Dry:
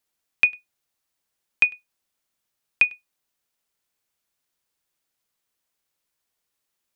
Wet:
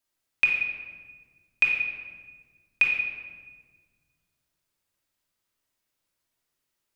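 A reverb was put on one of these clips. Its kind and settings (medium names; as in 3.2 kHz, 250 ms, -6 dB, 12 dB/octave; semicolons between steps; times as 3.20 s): simulated room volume 1500 m³, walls mixed, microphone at 2.8 m; trim -5 dB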